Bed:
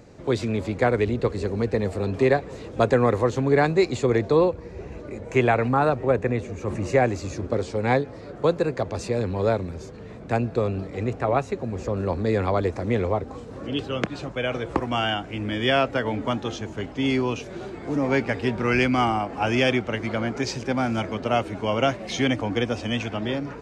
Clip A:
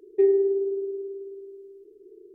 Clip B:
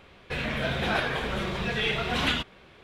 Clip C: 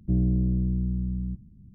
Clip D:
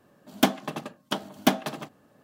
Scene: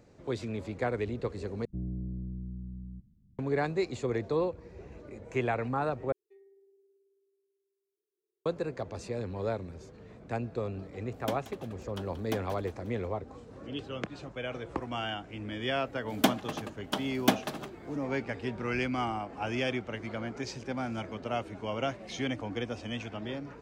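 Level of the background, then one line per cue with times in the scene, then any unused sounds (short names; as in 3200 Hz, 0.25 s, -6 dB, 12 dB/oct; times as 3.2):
bed -10.5 dB
1.65 replace with C -13 dB
6.12 replace with A -14.5 dB + differentiator
10.85 add D -15.5 dB + thinning echo 0.18 s, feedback 47%, level -13 dB
15.81 add D -3.5 dB
not used: B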